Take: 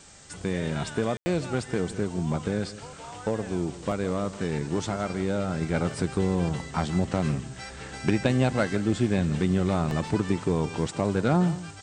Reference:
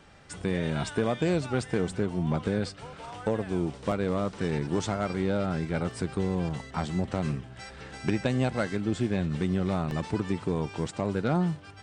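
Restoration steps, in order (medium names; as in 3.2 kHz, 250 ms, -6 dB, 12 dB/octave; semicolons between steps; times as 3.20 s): room tone fill 1.17–1.26 s; noise print and reduce 6 dB; inverse comb 163 ms -15.5 dB; gain correction -3.5 dB, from 5.61 s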